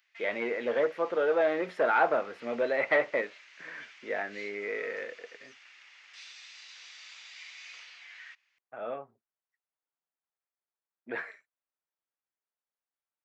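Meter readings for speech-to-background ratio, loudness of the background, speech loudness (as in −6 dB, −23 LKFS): 19.5 dB, −49.5 LKFS, −30.0 LKFS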